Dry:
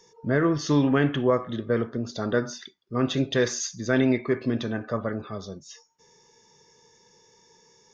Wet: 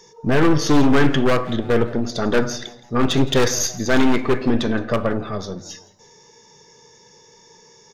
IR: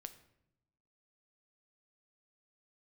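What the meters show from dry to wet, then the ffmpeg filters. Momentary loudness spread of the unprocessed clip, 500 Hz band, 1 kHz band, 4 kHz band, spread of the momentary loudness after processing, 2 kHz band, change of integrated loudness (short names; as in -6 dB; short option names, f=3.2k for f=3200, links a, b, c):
13 LU, +5.5 dB, +9.0 dB, +9.0 dB, 12 LU, +7.0 dB, +6.0 dB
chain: -filter_complex "[0:a]aeval=exprs='(tanh(10*val(0)+0.65)-tanh(0.65))/10':c=same,acontrast=31,aeval=exprs='0.168*(abs(mod(val(0)/0.168+3,4)-2)-1)':c=same,asplit=4[a][b][c][d];[b]adelay=167,afreqshift=120,volume=-20dB[e];[c]adelay=334,afreqshift=240,volume=-28dB[f];[d]adelay=501,afreqshift=360,volume=-35.9dB[g];[a][e][f][g]amix=inputs=4:normalize=0,asplit=2[h][i];[1:a]atrim=start_sample=2205[j];[i][j]afir=irnorm=-1:irlink=0,volume=7dB[k];[h][k]amix=inputs=2:normalize=0"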